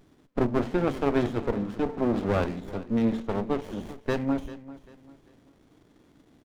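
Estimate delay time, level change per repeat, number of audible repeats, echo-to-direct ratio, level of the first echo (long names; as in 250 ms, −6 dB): 393 ms, −9.5 dB, 2, −16.5 dB, −17.0 dB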